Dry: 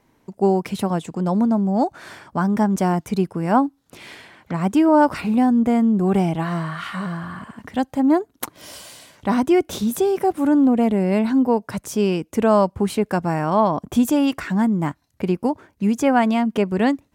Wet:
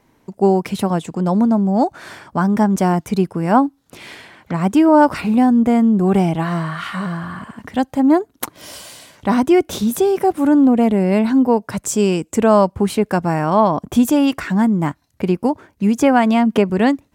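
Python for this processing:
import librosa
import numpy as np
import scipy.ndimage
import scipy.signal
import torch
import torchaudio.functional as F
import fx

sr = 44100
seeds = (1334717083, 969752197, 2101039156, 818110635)

y = fx.peak_eq(x, sr, hz=7600.0, db=14.0, octaves=0.32, at=(11.86, 12.38))
y = fx.band_squash(y, sr, depth_pct=70, at=(16.01, 16.7))
y = y * librosa.db_to_amplitude(3.5)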